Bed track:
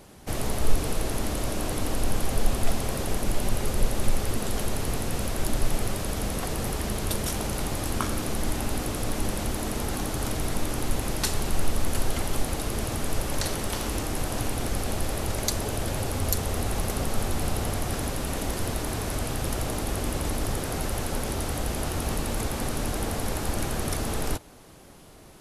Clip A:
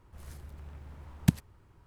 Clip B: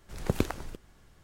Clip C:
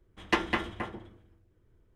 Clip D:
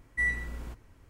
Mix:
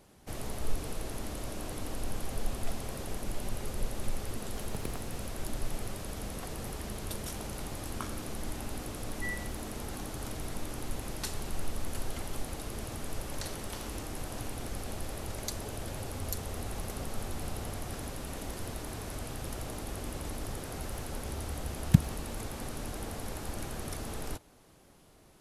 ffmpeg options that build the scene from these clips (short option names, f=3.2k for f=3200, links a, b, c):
-filter_complex "[0:a]volume=-10dB[a];[2:a]acrusher=bits=5:dc=4:mix=0:aa=0.000001[b];[1:a]asubboost=boost=6.5:cutoff=190[c];[b]atrim=end=1.23,asetpts=PTS-STARTPTS,volume=-14dB,afade=t=in:d=0.004:c=hsin,afade=t=out:st=1.226:d=0.004:c=hsin,adelay=196245S[d];[4:a]atrim=end=1.09,asetpts=PTS-STARTPTS,volume=-10.5dB,afade=t=in:d=0.004:c=hsin,afade=t=out:st=1.086:d=0.004:c=hsin,adelay=9040[e];[c]atrim=end=1.86,asetpts=PTS-STARTPTS,volume=-3dB,afade=t=in:d=0.004:c=hsin,afade=t=out:st=1.856:d=0.004:c=hsin,adelay=20660[f];[a][d][e][f]amix=inputs=4:normalize=0"